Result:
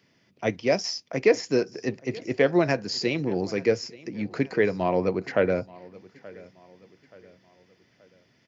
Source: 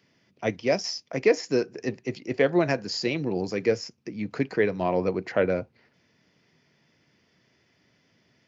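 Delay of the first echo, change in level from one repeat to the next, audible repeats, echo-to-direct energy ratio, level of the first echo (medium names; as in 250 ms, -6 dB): 878 ms, -7.5 dB, 2, -20.5 dB, -21.5 dB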